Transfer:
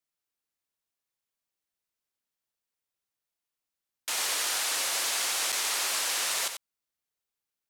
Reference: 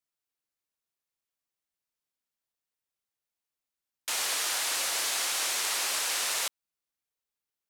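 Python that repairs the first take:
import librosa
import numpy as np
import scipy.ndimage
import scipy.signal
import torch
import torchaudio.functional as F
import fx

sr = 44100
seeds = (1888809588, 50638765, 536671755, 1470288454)

y = fx.fix_interpolate(x, sr, at_s=(5.52,), length_ms=6.6)
y = fx.fix_echo_inverse(y, sr, delay_ms=90, level_db=-8.0)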